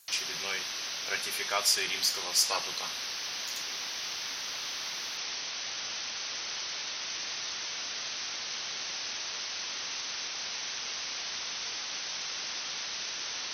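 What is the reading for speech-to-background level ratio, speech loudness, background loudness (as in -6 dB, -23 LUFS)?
4.0 dB, -30.0 LUFS, -34.0 LUFS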